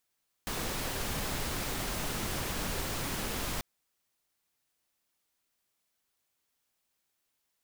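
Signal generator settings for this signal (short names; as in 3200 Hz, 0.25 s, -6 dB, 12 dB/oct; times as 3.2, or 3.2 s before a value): noise pink, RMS -34.5 dBFS 3.14 s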